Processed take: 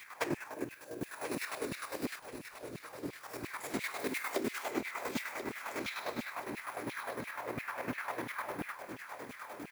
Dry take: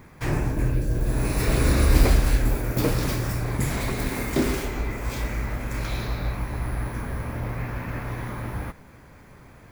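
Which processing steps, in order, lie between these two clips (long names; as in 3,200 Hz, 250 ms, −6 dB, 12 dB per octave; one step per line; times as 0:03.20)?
high-pass filter 48 Hz 24 dB per octave
0:02.19–0:03.21: spectral tilt −3.5 dB per octave
downward compressor 12 to 1, threshold −34 dBFS, peak gain reduction 30.5 dB
auto-filter high-pass saw down 2.9 Hz 220–2,700 Hz
bit-depth reduction 10 bits, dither none
square-wave tremolo 9.9 Hz, depth 60%, duty 35%
repeating echo 1,035 ms, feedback 38%, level −10 dB
level +4.5 dB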